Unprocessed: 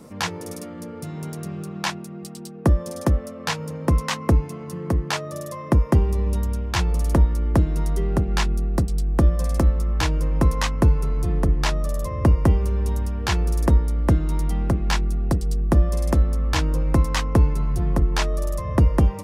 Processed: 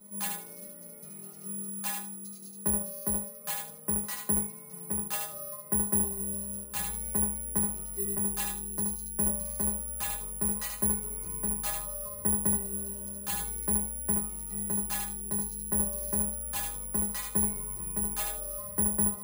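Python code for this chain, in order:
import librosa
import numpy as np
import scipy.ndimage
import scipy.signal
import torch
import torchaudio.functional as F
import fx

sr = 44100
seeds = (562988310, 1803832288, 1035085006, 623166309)

p1 = fx.stiff_resonator(x, sr, f0_hz=200.0, decay_s=0.31, stiffness=0.002)
p2 = p1 + fx.echo_thinned(p1, sr, ms=75, feedback_pct=22, hz=180.0, wet_db=-4, dry=0)
p3 = (np.kron(scipy.signal.resample_poly(p2, 1, 4), np.eye(4)[0]) * 4)[:len(p2)]
y = F.gain(torch.from_numpy(p3), -1.5).numpy()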